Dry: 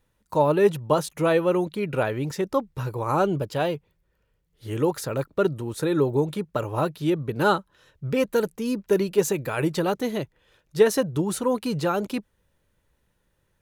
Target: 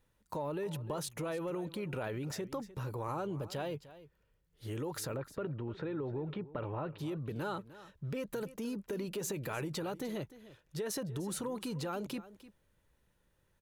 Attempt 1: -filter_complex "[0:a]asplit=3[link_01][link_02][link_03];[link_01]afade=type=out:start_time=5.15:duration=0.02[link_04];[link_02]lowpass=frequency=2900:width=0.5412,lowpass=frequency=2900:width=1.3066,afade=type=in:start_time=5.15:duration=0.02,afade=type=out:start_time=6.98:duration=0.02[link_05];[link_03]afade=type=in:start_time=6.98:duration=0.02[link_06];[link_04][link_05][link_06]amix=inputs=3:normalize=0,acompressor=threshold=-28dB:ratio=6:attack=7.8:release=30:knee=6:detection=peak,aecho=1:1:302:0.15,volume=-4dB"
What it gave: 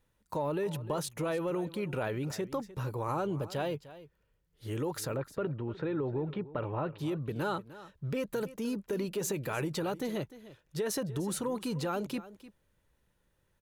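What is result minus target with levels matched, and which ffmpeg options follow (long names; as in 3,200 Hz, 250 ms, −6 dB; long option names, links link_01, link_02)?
downward compressor: peak gain reduction −5 dB
-filter_complex "[0:a]asplit=3[link_01][link_02][link_03];[link_01]afade=type=out:start_time=5.15:duration=0.02[link_04];[link_02]lowpass=frequency=2900:width=0.5412,lowpass=frequency=2900:width=1.3066,afade=type=in:start_time=5.15:duration=0.02,afade=type=out:start_time=6.98:duration=0.02[link_05];[link_03]afade=type=in:start_time=6.98:duration=0.02[link_06];[link_04][link_05][link_06]amix=inputs=3:normalize=0,acompressor=threshold=-34dB:ratio=6:attack=7.8:release=30:knee=6:detection=peak,aecho=1:1:302:0.15,volume=-4dB"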